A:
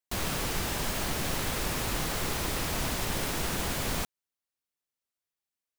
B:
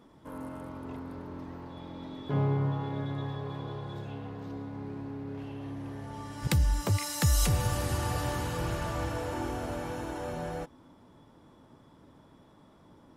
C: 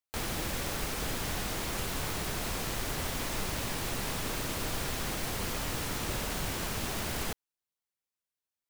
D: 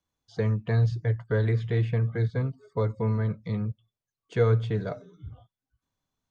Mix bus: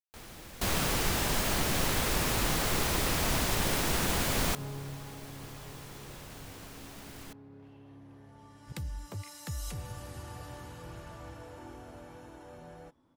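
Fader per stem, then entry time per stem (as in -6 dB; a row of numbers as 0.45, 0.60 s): +2.0 dB, -13.0 dB, -13.5 dB, off; 0.50 s, 2.25 s, 0.00 s, off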